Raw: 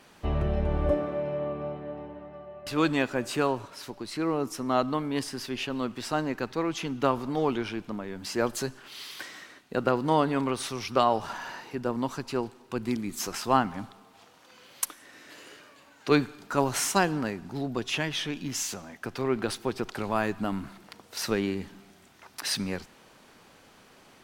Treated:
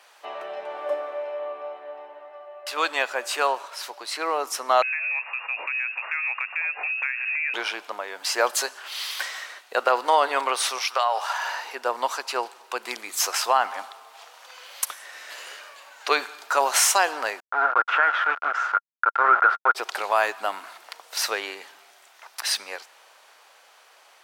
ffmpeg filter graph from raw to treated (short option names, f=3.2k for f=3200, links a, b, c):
-filter_complex "[0:a]asettb=1/sr,asplit=3[a][b][c];[a]atrim=end=4.824[d];[b]atrim=start=4.82:end=7.54,asetpts=PTS-STARTPTS,afade=t=in:d=0.004:c=qsin,afade=t=out:st=2.716:d=0.004:c=qsin,lowpass=f=2.4k:t=q:w=0.5098,lowpass=f=2.4k:t=q:w=0.6013,lowpass=f=2.4k:t=q:w=0.9,lowpass=f=2.4k:t=q:w=2.563,afreqshift=-2800,acompressor=threshold=-36dB:ratio=4:attack=3.2:release=140:knee=1:detection=peak[e];[c]atrim=start=7.536[f];[d][e]acrossfade=d=0.004:c1=hsin:c2=qsin[g];[g][f]acrossfade=d=0.004:c1=qsin:c2=hsin,asettb=1/sr,asplit=3[h][i][j];[h]atrim=end=10.784[k];[i]atrim=start=10.78:end=11.42,asetpts=PTS-STARTPTS,afade=t=in:d=0.004:c=qsin,afade=t=out:st=0.636:d=0.004:c=qsin,highpass=610,acompressor=threshold=-26dB:ratio=6:attack=3.2:release=140:knee=1:detection=peak,aeval=exprs='val(0)+0.00178*(sin(2*PI*60*n/s)+sin(2*PI*2*60*n/s)/2+sin(2*PI*3*60*n/s)/3+sin(2*PI*4*60*n/s)/4+sin(2*PI*5*60*n/s)/5)':c=same[l];[j]atrim=start=11.416[m];[k][l]acrossfade=d=0.004:c1=hsin:c2=qsin[n];[n][m]acrossfade=d=0.004:c1=qsin:c2=hsin,asettb=1/sr,asplit=3[o][p][q];[o]atrim=end=17.404[r];[p]atrim=start=17.4:end=19.75,asetpts=PTS-STARTPTS,afade=t=in:d=0.004:c=qsin,afade=t=out:st=2.346:d=0.004:c=qsin,bandreject=f=50:t=h:w=6,bandreject=f=100:t=h:w=6,aeval=exprs='val(0)*gte(abs(val(0)),0.0266)':c=same,lowpass=f=1.4k:t=q:w=16[s];[q]atrim=start=19.746[t];[r][s]acrossfade=d=0.004:c1=hsin:c2=qsin[u];[u][t]acrossfade=d=0.004:c1=qsin:c2=hsin,dynaudnorm=f=840:g=9:m=11.5dB,highpass=f=590:w=0.5412,highpass=f=590:w=1.3066,alimiter=level_in=10dB:limit=-1dB:release=50:level=0:latency=1,volume=-7dB"